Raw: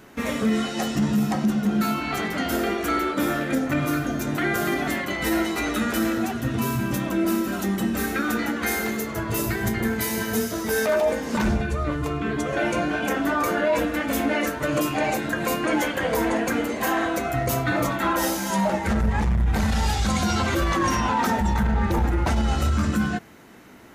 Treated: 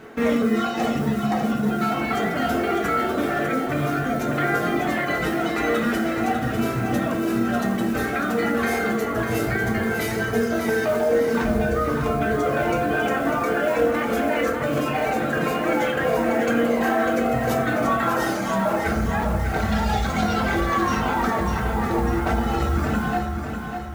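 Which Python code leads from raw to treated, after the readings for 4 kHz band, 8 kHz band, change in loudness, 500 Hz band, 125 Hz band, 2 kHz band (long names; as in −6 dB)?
−2.0 dB, −5.5 dB, +1.5 dB, +4.0 dB, −0.5 dB, +1.5 dB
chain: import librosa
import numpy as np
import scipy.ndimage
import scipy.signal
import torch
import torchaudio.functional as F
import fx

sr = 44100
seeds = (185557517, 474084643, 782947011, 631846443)

p1 = fx.notch(x, sr, hz=1000.0, q=11.0)
p2 = fx.dereverb_blind(p1, sr, rt60_s=1.1)
p3 = fx.lowpass(p2, sr, hz=1600.0, slope=6)
p4 = fx.low_shelf(p3, sr, hz=280.0, db=-7.5)
p5 = fx.over_compress(p4, sr, threshold_db=-33.0, ratio=-1.0)
p6 = p4 + F.gain(torch.from_numpy(p5), 0.0).numpy()
p7 = fx.mod_noise(p6, sr, seeds[0], snr_db=25)
p8 = p7 + fx.echo_feedback(p7, sr, ms=598, feedback_pct=49, wet_db=-7, dry=0)
y = fx.rev_fdn(p8, sr, rt60_s=0.97, lf_ratio=1.35, hf_ratio=0.5, size_ms=13.0, drr_db=2.0)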